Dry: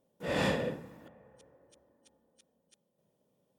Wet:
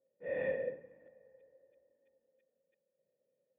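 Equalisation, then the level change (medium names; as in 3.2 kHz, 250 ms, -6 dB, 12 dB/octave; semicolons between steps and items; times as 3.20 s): cascade formant filter e; peaking EQ 1.3 kHz -4 dB 0.3 oct; +1.5 dB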